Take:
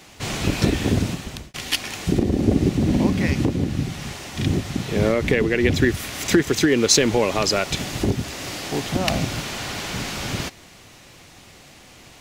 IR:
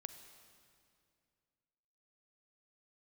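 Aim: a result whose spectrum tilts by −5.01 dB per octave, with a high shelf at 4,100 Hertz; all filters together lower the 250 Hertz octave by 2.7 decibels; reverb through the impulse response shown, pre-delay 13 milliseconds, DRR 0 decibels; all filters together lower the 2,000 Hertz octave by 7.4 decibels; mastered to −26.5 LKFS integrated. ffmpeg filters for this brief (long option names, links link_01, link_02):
-filter_complex "[0:a]equalizer=frequency=250:width_type=o:gain=-3.5,equalizer=frequency=2000:width_type=o:gain=-8.5,highshelf=frequency=4100:gain=-3,asplit=2[link_01][link_02];[1:a]atrim=start_sample=2205,adelay=13[link_03];[link_02][link_03]afir=irnorm=-1:irlink=0,volume=4dB[link_04];[link_01][link_04]amix=inputs=2:normalize=0,volume=-5.5dB"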